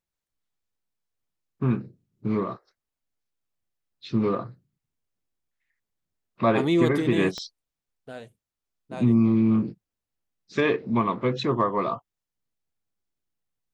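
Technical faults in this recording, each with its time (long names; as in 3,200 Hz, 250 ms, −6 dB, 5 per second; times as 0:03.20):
0:07.38: click −20 dBFS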